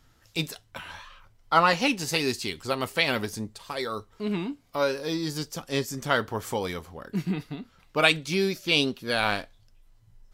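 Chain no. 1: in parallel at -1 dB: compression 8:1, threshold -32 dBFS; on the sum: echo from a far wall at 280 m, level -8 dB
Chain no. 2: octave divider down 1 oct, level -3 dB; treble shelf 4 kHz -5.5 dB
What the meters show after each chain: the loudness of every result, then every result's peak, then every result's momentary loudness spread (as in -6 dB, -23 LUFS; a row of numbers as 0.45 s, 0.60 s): -25.5 LUFS, -27.5 LUFS; -2.5 dBFS, -5.0 dBFS; 14 LU, 13 LU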